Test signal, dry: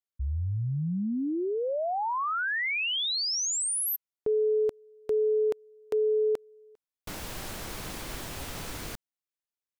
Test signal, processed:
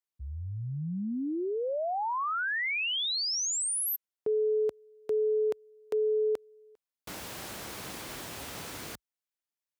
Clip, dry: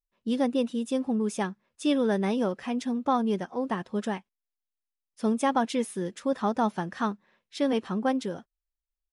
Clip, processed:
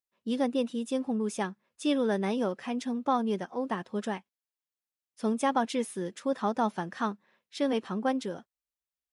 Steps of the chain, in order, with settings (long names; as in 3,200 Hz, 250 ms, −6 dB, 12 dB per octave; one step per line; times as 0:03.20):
high-pass filter 48 Hz 24 dB per octave
low-shelf EQ 100 Hz −10.5 dB
level −1.5 dB